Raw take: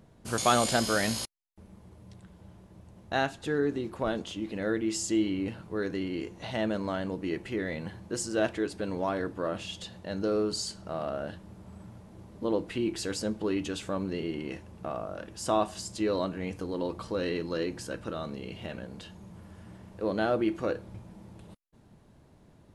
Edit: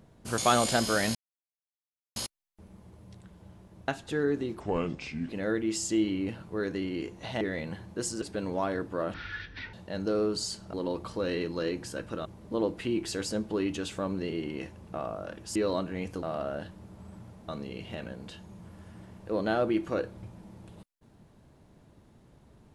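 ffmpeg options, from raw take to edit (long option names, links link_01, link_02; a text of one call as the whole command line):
ffmpeg -i in.wav -filter_complex "[0:a]asplit=14[link_01][link_02][link_03][link_04][link_05][link_06][link_07][link_08][link_09][link_10][link_11][link_12][link_13][link_14];[link_01]atrim=end=1.15,asetpts=PTS-STARTPTS,afade=type=out:start_time=1.146:duration=0.004:curve=hsin,apad=pad_dur=1.01[link_15];[link_02]atrim=start=1.15:end=2.872,asetpts=PTS-STARTPTS,afade=type=in:duration=0.004:curve=hsin[link_16];[link_03]atrim=start=3.228:end=3.954[link_17];[link_04]atrim=start=3.95:end=4.48,asetpts=PTS-STARTPTS,asetrate=33957,aresample=44100[link_18];[link_05]atrim=start=4.476:end=6.602[link_19];[link_06]atrim=start=7.548:end=8.362[link_20];[link_07]atrim=start=8.668:end=9.594[link_21];[link_08]atrim=start=9.59:end=9.9,asetpts=PTS-STARTPTS,asetrate=22932,aresample=44100,atrim=end_sample=26290,asetpts=PTS-STARTPTS[link_22];[link_09]atrim=start=9.896:end=10.902[link_23];[link_10]atrim=start=16.678:end=18.202[link_24];[link_11]atrim=start=12.158:end=15.462[link_25];[link_12]atrim=start=16.008:end=16.682[link_26];[link_13]atrim=start=10.898:end=12.162[link_27];[link_14]atrim=start=18.198[link_28];[link_15][link_16]concat=n=2:v=0:a=1[link_29];[link_29][link_17]acrossfade=duration=0.004:curve1=hsin:curve2=hsin[link_30];[link_30][link_18]acrossfade=duration=0.004:curve1=hsin:curve2=hsin[link_31];[link_31][link_19]acrossfade=duration=0.004:curve1=hsin:curve2=hsin[link_32];[link_32][link_20]acrossfade=duration=0.004:curve1=hsin:curve2=hsin[link_33];[link_33][link_21]acrossfade=duration=0.004:curve1=hsin:curve2=hsin[link_34];[link_34][link_22]acrossfade=duration=0.004:curve1=hsin:curve2=hsin[link_35];[link_35][link_23]acrossfade=duration=0.004:curve1=hsin:curve2=hsin[link_36];[link_36][link_24]acrossfade=duration=0.004:curve1=hsin:curve2=hsin[link_37];[link_37][link_25]acrossfade=duration=0.004:curve1=hsin:curve2=hsin[link_38];[link_38][link_26]acrossfade=duration=0.004:curve1=hsin:curve2=hsin[link_39];[link_39][link_27]acrossfade=duration=0.004:curve1=hsin:curve2=hsin[link_40];[link_40][link_28]acrossfade=duration=0.004:curve1=hsin:curve2=hsin" out.wav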